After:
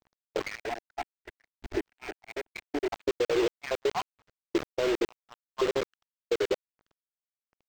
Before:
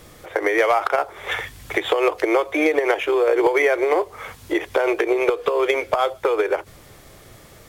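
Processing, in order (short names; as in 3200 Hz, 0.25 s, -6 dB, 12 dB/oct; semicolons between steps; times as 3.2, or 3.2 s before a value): random spectral dropouts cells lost 74%; limiter -16.5 dBFS, peak gain reduction 8 dB; compressor 2:1, threshold -35 dBFS, peak gain reduction 8.5 dB; low shelf 410 Hz +11.5 dB; bit-crush 5-bit; gate -29 dBFS, range -30 dB; 0.58–2.9 fixed phaser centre 770 Hz, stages 8; decimation joined by straight lines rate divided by 4×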